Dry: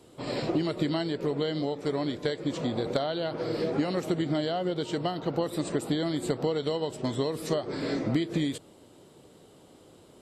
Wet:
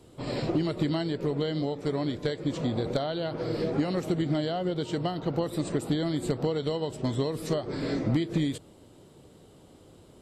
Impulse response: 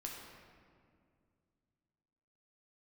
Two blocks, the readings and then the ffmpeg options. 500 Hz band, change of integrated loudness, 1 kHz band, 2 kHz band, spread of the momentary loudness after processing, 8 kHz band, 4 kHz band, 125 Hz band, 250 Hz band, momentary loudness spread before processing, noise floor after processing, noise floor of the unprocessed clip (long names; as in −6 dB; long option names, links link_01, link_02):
−0.5 dB, +0.5 dB, −1.0 dB, −1.5 dB, 4 LU, −1.5 dB, −1.5 dB, +3.5 dB, +0.5 dB, 3 LU, −54 dBFS, −55 dBFS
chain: -af "lowshelf=frequency=130:gain=11.5,asoftclip=type=hard:threshold=-16dB,volume=-1.5dB"